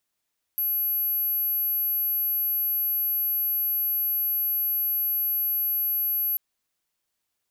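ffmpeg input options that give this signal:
-f lavfi -i "sine=f=11700:d=5.79:r=44100,volume=-4.44dB"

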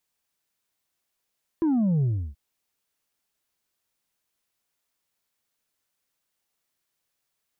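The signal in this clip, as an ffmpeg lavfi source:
-f lavfi -i "aevalsrc='0.1*clip((0.73-t)/0.32,0,1)*tanh(1.41*sin(2*PI*340*0.73/log(65/340)*(exp(log(65/340)*t/0.73)-1)))/tanh(1.41)':d=0.73:s=44100"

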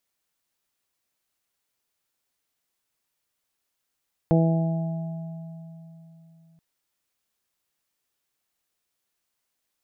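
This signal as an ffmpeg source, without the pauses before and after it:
-f lavfi -i "aevalsrc='0.15*pow(10,-3*t/3.57)*sin(2*PI*164*t)+0.0841*pow(10,-3*t/1.39)*sin(2*PI*328*t)+0.0708*pow(10,-3*t/0.95)*sin(2*PI*492*t)+0.0596*pow(10,-3*t/2.75)*sin(2*PI*656*t)+0.0237*pow(10,-3*t/2.54)*sin(2*PI*820*t)':d=2.28:s=44100"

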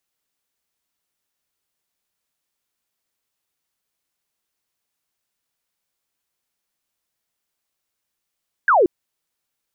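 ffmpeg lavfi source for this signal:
-f lavfi -i "aevalsrc='0.282*clip(t/0.002,0,1)*clip((0.18-t)/0.002,0,1)*sin(2*PI*1700*0.18/log(320/1700)*(exp(log(320/1700)*t/0.18)-1))':d=0.18:s=44100"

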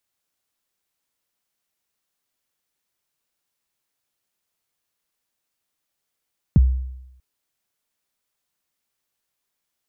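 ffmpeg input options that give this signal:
-f lavfi -i "aevalsrc='0.422*pow(10,-3*t/0.88)*sin(2*PI*(220*0.025/log(64/220)*(exp(log(64/220)*min(t,0.025)/0.025)-1)+64*max(t-0.025,0)))':d=0.64:s=44100"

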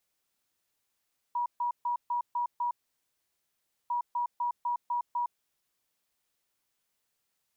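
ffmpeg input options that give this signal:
-f lavfi -i "aevalsrc='0.0447*sin(2*PI*964*t)*clip(min(mod(mod(t,2.55),0.25),0.11-mod(mod(t,2.55),0.25))/0.005,0,1)*lt(mod(t,2.55),1.5)':d=5.1:s=44100"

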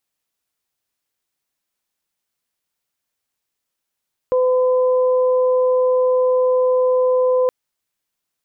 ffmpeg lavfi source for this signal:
-f lavfi -i "aevalsrc='0.224*sin(2*PI*507*t)+0.0501*sin(2*PI*1014*t)':d=3.17:s=44100"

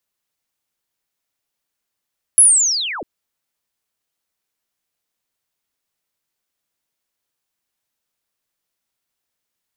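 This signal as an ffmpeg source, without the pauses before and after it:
-f lavfi -i "aevalsrc='pow(10,(-4.5-21.5*t/0.65)/20)*sin(2*PI*(11000*t-10780*t*t/(2*0.65)))':d=0.65:s=44100"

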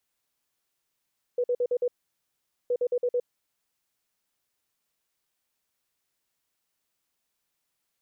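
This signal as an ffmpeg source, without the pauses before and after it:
-f lavfi -i "aevalsrc='0.0794*sin(2*PI*490*t)*clip(min(mod(mod(t,1.32),0.11),0.06-mod(mod(t,1.32),0.11))/0.005,0,1)*lt(mod(t,1.32),0.55)':d=2.64:s=44100"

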